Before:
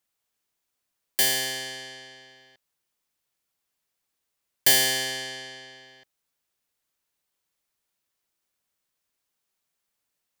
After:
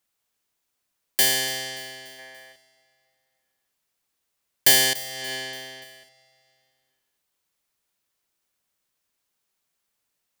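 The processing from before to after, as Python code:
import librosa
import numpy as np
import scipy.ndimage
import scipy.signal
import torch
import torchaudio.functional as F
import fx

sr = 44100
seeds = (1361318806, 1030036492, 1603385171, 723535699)

y = fx.spec_box(x, sr, start_s=2.19, length_s=0.33, low_hz=410.0, high_hz=2400.0, gain_db=7)
y = fx.over_compress(y, sr, threshold_db=-37.0, ratio=-1.0, at=(4.93, 5.84))
y = fx.echo_feedback(y, sr, ms=289, feedback_pct=52, wet_db=-19.0)
y = F.gain(torch.from_numpy(y), 2.5).numpy()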